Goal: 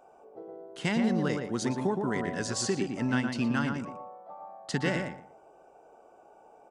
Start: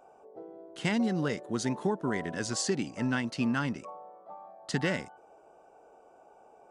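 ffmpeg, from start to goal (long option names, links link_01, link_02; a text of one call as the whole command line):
ffmpeg -i in.wav -filter_complex "[0:a]asplit=2[link_01][link_02];[link_02]adelay=117,lowpass=frequency=1800:poles=1,volume=-4dB,asplit=2[link_03][link_04];[link_04]adelay=117,lowpass=frequency=1800:poles=1,volume=0.22,asplit=2[link_05][link_06];[link_06]adelay=117,lowpass=frequency=1800:poles=1,volume=0.22[link_07];[link_01][link_03][link_05][link_07]amix=inputs=4:normalize=0" out.wav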